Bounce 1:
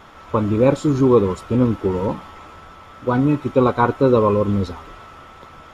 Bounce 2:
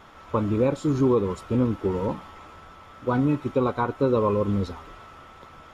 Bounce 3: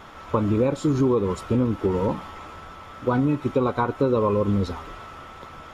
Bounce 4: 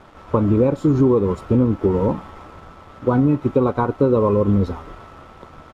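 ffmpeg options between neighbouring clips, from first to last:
ffmpeg -i in.wav -af "alimiter=limit=-7.5dB:level=0:latency=1:release=235,volume=-5dB" out.wav
ffmpeg -i in.wav -af "acompressor=threshold=-25dB:ratio=2.5,volume=5.5dB" out.wav
ffmpeg -i in.wav -af "aeval=exprs='sgn(val(0))*max(abs(val(0))-0.00422,0)':channel_layout=same,tiltshelf=frequency=1500:gain=6,aresample=32000,aresample=44100" out.wav

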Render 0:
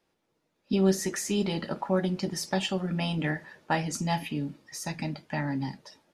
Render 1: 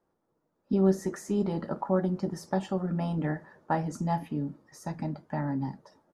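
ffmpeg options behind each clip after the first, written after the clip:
ffmpeg -i in.wav -af "firequalizer=gain_entry='entry(1200,0);entry(2500,-18);entry(6400,-12)':delay=0.05:min_phase=1" out.wav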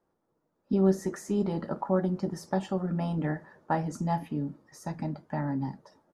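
ffmpeg -i in.wav -af anull out.wav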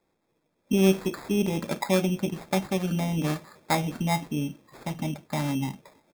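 ffmpeg -i in.wav -af "acrusher=samples=15:mix=1:aa=0.000001,volume=3dB" out.wav

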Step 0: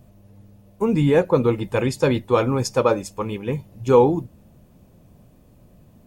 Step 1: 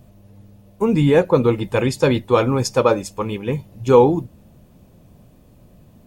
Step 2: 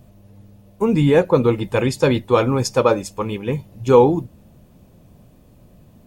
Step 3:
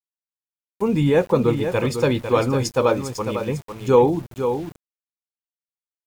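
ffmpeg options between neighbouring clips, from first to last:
ffmpeg -i in.wav -af "equalizer=frequency=3600:width=1.5:gain=2,volume=2.5dB" out.wav
ffmpeg -i in.wav -af anull out.wav
ffmpeg -i in.wav -af "aecho=1:1:500:0.398,aeval=exprs='val(0)*gte(abs(val(0)),0.0178)':channel_layout=same,volume=-3dB" out.wav

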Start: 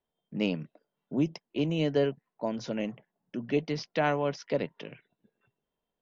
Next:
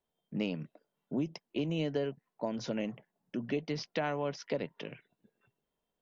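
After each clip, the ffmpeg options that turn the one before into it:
ffmpeg -i in.wav -af "acompressor=threshold=-30dB:ratio=4" out.wav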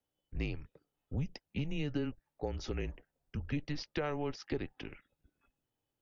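ffmpeg -i in.wav -af "afreqshift=-150,volume=-2dB" out.wav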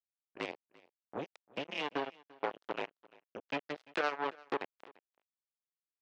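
ffmpeg -i in.wav -af "acrusher=bits=4:mix=0:aa=0.5,highpass=500,lowpass=3500,aecho=1:1:343:0.0668,volume=5.5dB" out.wav

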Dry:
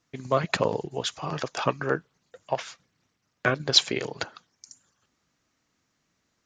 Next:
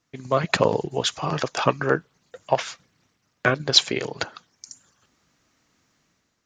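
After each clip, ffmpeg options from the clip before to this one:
ffmpeg -i in.wav -af "dynaudnorm=framelen=120:gausssize=7:maxgain=7.5dB" out.wav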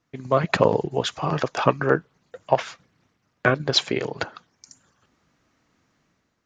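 ffmpeg -i in.wav -af "highshelf=frequency=3500:gain=-11,volume=2dB" out.wav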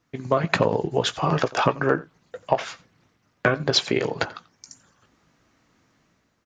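ffmpeg -i in.wav -filter_complex "[0:a]acompressor=threshold=-19dB:ratio=5,asplit=2[link_01][link_02];[link_02]adelay=18,volume=-11.5dB[link_03];[link_01][link_03]amix=inputs=2:normalize=0,aecho=1:1:88:0.0841,volume=3dB" out.wav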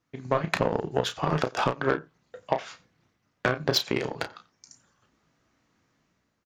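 ffmpeg -i in.wav -filter_complex "[0:a]aeval=exprs='0.75*(cos(1*acos(clip(val(0)/0.75,-1,1)))-cos(1*PI/2))+0.0596*(cos(7*acos(clip(val(0)/0.75,-1,1)))-cos(7*PI/2))':channel_layout=same,asplit=2[link_01][link_02];[link_02]adelay=32,volume=-9dB[link_03];[link_01][link_03]amix=inputs=2:normalize=0,alimiter=limit=-9dB:level=0:latency=1:release=218" out.wav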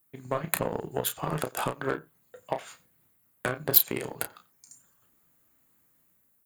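ffmpeg -i in.wav -af "aexciter=amount=14.3:drive=9.5:freq=8700,volume=-5dB" out.wav

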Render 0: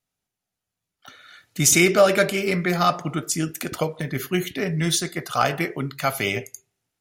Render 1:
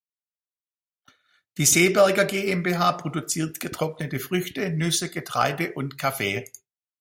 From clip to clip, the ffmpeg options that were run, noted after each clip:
ffmpeg -i in.wav -af "agate=range=-33dB:threshold=-36dB:ratio=3:detection=peak,volume=-1.5dB" out.wav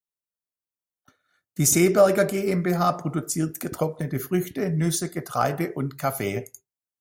ffmpeg -i in.wav -af "equalizer=frequency=3000:width=0.78:gain=-13.5,volume=2dB" out.wav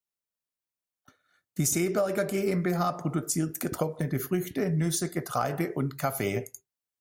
ffmpeg -i in.wav -af "acompressor=threshold=-23dB:ratio=10" out.wav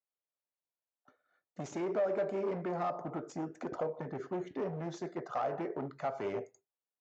ffmpeg -i in.wav -af "aresample=16000,asoftclip=type=hard:threshold=-26.5dB,aresample=44100,bandpass=frequency=640:width_type=q:width=1.1:csg=0" out.wav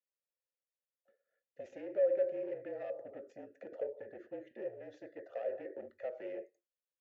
ffmpeg -i in.wav -filter_complex "[0:a]afreqshift=-43,asplit=3[link_01][link_02][link_03];[link_01]bandpass=frequency=530:width_type=q:width=8,volume=0dB[link_04];[link_02]bandpass=frequency=1840:width_type=q:width=8,volume=-6dB[link_05];[link_03]bandpass=frequency=2480:width_type=q:width=8,volume=-9dB[link_06];[link_04][link_05][link_06]amix=inputs=3:normalize=0,volume=4dB" out.wav

